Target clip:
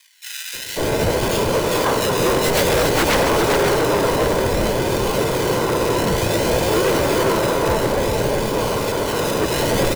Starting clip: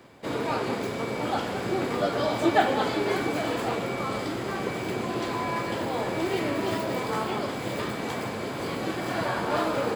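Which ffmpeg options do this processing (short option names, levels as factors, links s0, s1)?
-filter_complex "[0:a]acrusher=samples=31:mix=1:aa=0.000001:lfo=1:lforange=18.6:lforate=0.56,acrossover=split=1900[s0][s1];[s0]adelay=540[s2];[s2][s1]amix=inputs=2:normalize=0,asplit=2[s3][s4];[s4]asetrate=58866,aresample=44100,atempo=0.749154,volume=0.631[s5];[s3][s5]amix=inputs=2:normalize=0,aecho=1:1:2:0.43,asplit=2[s6][s7];[s7]aecho=0:1:403:0.501[s8];[s6][s8]amix=inputs=2:normalize=0,aeval=exprs='0.106*(abs(mod(val(0)/0.106+3,4)-2)-1)':c=same,volume=2.66"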